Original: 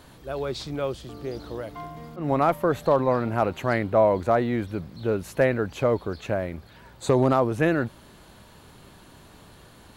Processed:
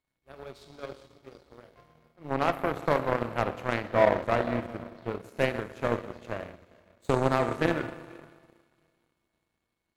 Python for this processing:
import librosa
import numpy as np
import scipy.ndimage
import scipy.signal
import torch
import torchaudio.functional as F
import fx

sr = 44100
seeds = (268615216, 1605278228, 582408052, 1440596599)

p1 = fx.rev_schroeder(x, sr, rt60_s=1.8, comb_ms=26, drr_db=3.5)
p2 = p1 + 10.0 ** (-53.0 / 20.0) * np.sin(2.0 * np.pi * 2200.0 * np.arange(len(p1)) / sr)
p3 = p2 + fx.echo_diffused(p2, sr, ms=450, feedback_pct=41, wet_db=-11.5, dry=0)
y = fx.power_curve(p3, sr, exponent=2.0)